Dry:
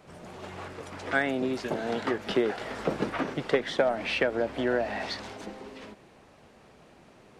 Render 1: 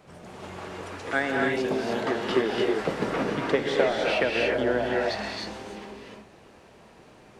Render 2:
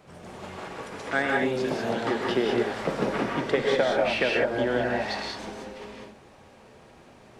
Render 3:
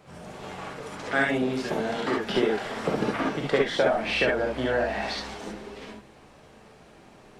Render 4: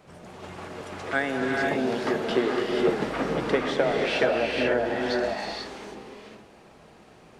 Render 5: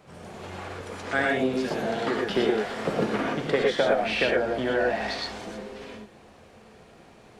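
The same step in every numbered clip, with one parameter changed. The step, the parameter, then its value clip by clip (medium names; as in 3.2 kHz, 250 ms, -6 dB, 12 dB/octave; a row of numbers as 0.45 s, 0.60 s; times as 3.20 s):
gated-style reverb, gate: 330 ms, 220 ms, 90 ms, 520 ms, 140 ms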